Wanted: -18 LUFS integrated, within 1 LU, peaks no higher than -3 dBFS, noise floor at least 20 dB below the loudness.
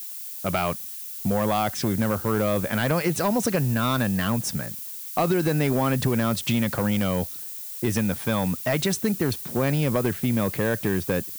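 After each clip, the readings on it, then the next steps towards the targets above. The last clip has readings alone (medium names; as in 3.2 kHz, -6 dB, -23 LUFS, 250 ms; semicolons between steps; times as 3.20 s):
clipped samples 1.1%; clipping level -15.5 dBFS; noise floor -36 dBFS; noise floor target -45 dBFS; loudness -24.5 LUFS; peak level -15.5 dBFS; loudness target -18.0 LUFS
-> clip repair -15.5 dBFS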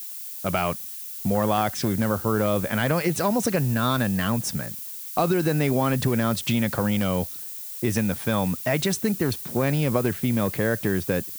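clipped samples 0.0%; noise floor -36 dBFS; noise floor target -45 dBFS
-> noise print and reduce 9 dB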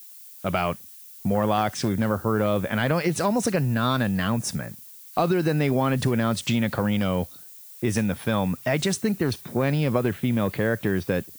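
noise floor -45 dBFS; loudness -24.5 LUFS; peak level -7.5 dBFS; loudness target -18.0 LUFS
-> trim +6.5 dB; peak limiter -3 dBFS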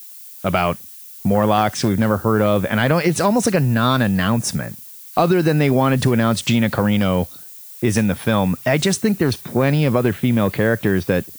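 loudness -18.0 LUFS; peak level -3.0 dBFS; noise floor -39 dBFS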